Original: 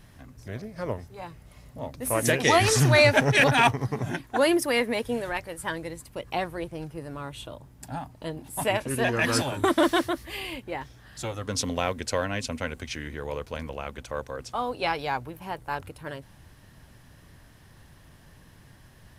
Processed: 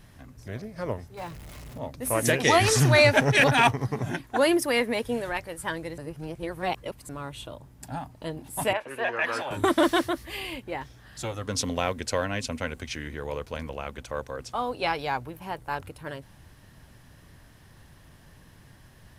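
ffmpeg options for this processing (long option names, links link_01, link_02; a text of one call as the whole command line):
ffmpeg -i in.wav -filter_complex "[0:a]asettb=1/sr,asplit=3[link_01][link_02][link_03];[link_01]atrim=end=1.174[link_04];[link_02]atrim=start=1.17:end=1.78,asetpts=PTS-STARTPTS,afade=type=in:duration=0.004:curve=qsin,afade=type=out:start_time=0.606:duration=0.004:curve=qsin,aeval=exprs='val(0)+0.5*0.00891*sgn(val(0))':channel_layout=same[link_05];[link_03]atrim=start=1.776[link_06];[link_04][link_05]acrossfade=duration=0.004:curve1=hsin:curve2=qsin[link_07];[link_07][link_06]acrossfade=duration=0.004:curve1=qsin:curve2=hsin,asettb=1/sr,asplit=3[link_08][link_09][link_10];[link_08]atrim=end=8.734[link_11];[link_09]atrim=start=8.73:end=9.51,asetpts=PTS-STARTPTS,afade=type=in:duration=0.004:curve=qsin,afade=type=out:start_time=0.776:duration=0.004:curve=qsin,acrossover=split=450 3000:gain=0.1 1 0.158[link_12][link_13][link_14];[link_12][link_13][link_14]amix=inputs=3:normalize=0[link_15];[link_10]atrim=start=9.506[link_16];[link_11][link_15]acrossfade=duration=0.004:curve1=hsin:curve2=qsin[link_17];[link_17][link_16]acrossfade=duration=0.004:curve1=qsin:curve2=hsin,asplit=3[link_18][link_19][link_20];[link_18]atrim=end=5.982[link_21];[link_19]atrim=start=5.978:end=7.092,asetpts=PTS-STARTPTS,areverse[link_22];[link_20]atrim=start=7.088[link_23];[link_21][link_22]acrossfade=duration=0.004:curve1=hsin:curve2=hsin[link_24];[link_24][link_23]acrossfade=duration=0.004:curve1=hsin:curve2=hsin" out.wav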